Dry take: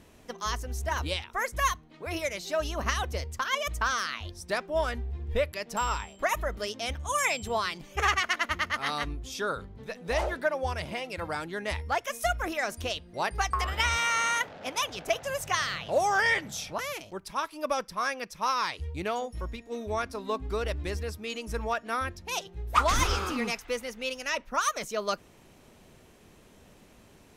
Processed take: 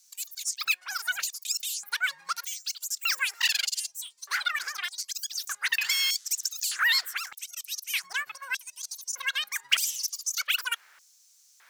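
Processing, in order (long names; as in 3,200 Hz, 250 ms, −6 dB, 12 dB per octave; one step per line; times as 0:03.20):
dynamic equaliser 580 Hz, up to −6 dB, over −42 dBFS, Q 1.7
auto-filter high-pass square 0.35 Hz 680–2,600 Hz
wrong playback speed 33 rpm record played at 78 rpm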